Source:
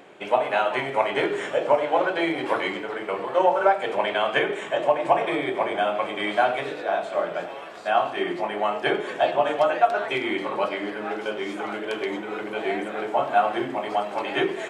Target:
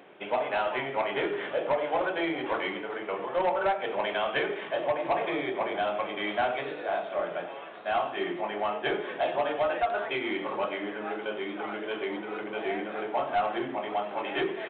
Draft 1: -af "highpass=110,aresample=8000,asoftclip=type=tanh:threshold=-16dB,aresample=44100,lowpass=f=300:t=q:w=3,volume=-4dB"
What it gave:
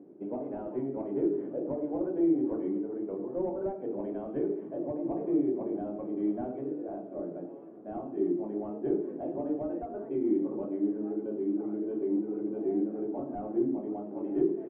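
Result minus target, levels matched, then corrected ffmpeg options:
250 Hz band +9.5 dB
-af "highpass=110,aresample=8000,asoftclip=type=tanh:threshold=-16dB,aresample=44100,volume=-4dB"

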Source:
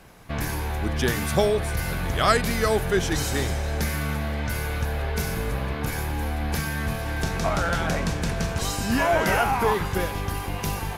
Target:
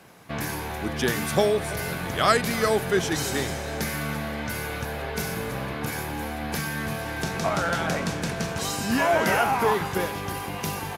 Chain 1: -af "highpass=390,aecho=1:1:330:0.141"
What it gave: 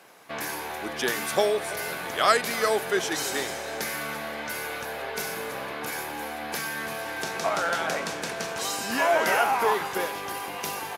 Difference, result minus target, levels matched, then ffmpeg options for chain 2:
125 Hz band -14.0 dB
-af "highpass=130,aecho=1:1:330:0.141"

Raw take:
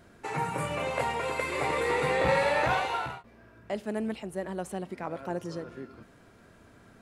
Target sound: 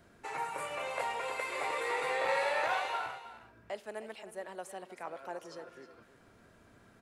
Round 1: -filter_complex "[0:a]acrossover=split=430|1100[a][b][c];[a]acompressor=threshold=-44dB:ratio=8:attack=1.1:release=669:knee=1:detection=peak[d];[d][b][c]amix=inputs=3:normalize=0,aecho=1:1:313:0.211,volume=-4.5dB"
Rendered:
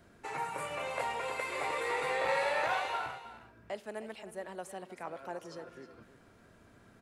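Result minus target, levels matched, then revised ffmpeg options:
compressor: peak gain reduction -7 dB
-filter_complex "[0:a]acrossover=split=430|1100[a][b][c];[a]acompressor=threshold=-52dB:ratio=8:attack=1.1:release=669:knee=1:detection=peak[d];[d][b][c]amix=inputs=3:normalize=0,aecho=1:1:313:0.211,volume=-4.5dB"

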